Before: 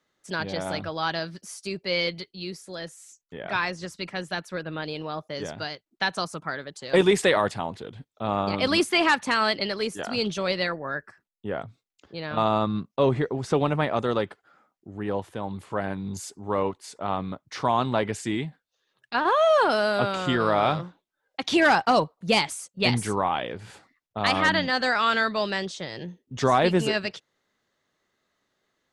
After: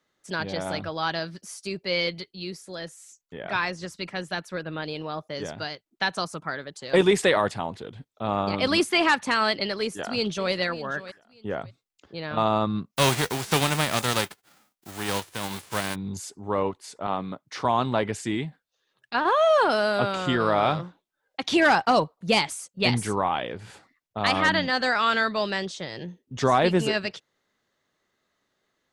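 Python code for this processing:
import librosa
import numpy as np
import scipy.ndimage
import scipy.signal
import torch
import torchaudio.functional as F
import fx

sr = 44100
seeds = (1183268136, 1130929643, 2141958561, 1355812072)

y = fx.echo_throw(x, sr, start_s=9.79, length_s=0.73, ms=590, feedback_pct=20, wet_db=-15.0)
y = fx.envelope_flatten(y, sr, power=0.3, at=(12.95, 15.94), fade=0.02)
y = fx.highpass(y, sr, hz=140.0, slope=12, at=(17.07, 17.65))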